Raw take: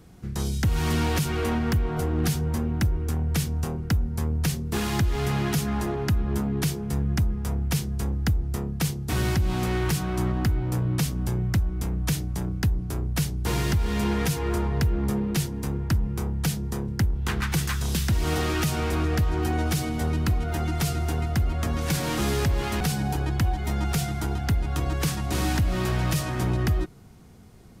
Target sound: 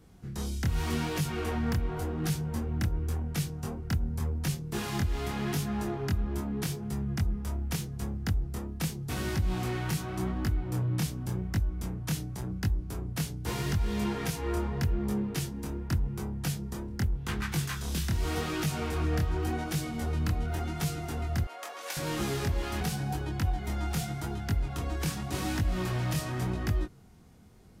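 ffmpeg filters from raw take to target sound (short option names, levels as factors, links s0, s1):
-filter_complex "[0:a]asettb=1/sr,asplit=3[s0][s1][s2];[s0]atrim=end=21.444[s3];[s1]atrim=start=21.44:end=21.97,asetpts=PTS-STARTPTS,afade=t=in:d=0.004:c=qsin,afade=t=out:st=0.526:d=0.004:c=qsin,highpass=f=520:w=0.5412,highpass=f=520:w=1.3066[s4];[s2]atrim=start=21.966[s5];[s3][s4]acrossfade=d=0.004:c1=hsin:c2=qsin[s6];[s6][s5]acrossfade=d=0.004:c1=qsin:c2=hsin,flanger=delay=19.5:depth=6.3:speed=0.86,volume=0.708"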